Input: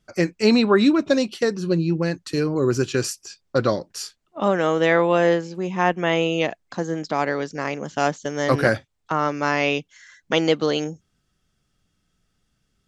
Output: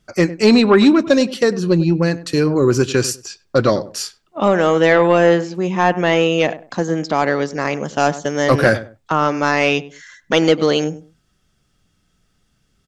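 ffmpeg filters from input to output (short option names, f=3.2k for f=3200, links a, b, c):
-filter_complex "[0:a]asplit=2[a][b];[b]adelay=99,lowpass=f=1.1k:p=1,volume=-15.5dB,asplit=2[c][d];[d]adelay=99,lowpass=f=1.1k:p=1,volume=0.24[e];[a][c][e]amix=inputs=3:normalize=0,acontrast=68"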